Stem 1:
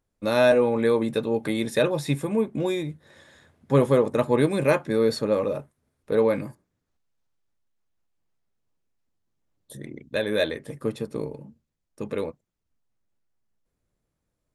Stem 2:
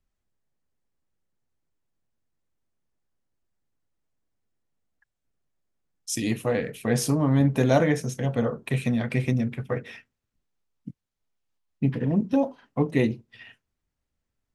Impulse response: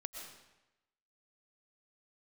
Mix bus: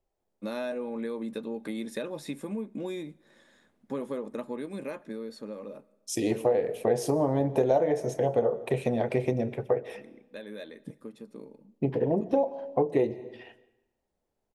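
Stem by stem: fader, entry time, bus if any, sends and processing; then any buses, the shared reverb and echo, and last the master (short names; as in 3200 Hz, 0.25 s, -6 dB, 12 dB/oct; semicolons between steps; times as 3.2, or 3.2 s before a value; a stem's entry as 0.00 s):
-9.0 dB, 0.20 s, send -22 dB, resonant low shelf 160 Hz -7.5 dB, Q 3; compressor 6:1, threshold -22 dBFS, peak gain reduction 9 dB; auto duck -7 dB, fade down 1.90 s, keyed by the second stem
-6.0 dB, 0.00 s, send -13 dB, band shelf 560 Hz +14.5 dB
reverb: on, RT60 0.95 s, pre-delay 80 ms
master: compressor 4:1, threshold -22 dBFS, peak gain reduction 13 dB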